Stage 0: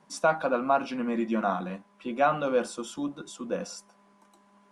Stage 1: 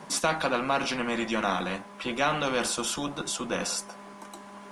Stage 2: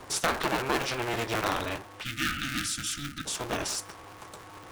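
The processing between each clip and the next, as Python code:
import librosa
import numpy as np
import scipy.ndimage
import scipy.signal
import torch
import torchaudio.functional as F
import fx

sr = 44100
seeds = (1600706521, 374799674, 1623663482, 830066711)

y1 = fx.spectral_comp(x, sr, ratio=2.0)
y2 = fx.cycle_switch(y1, sr, every=2, mode='inverted')
y2 = fx.spec_box(y2, sr, start_s=2.04, length_s=1.22, low_hz=330.0, high_hz=1200.0, gain_db=-28)
y2 = y2 * librosa.db_to_amplitude(-1.5)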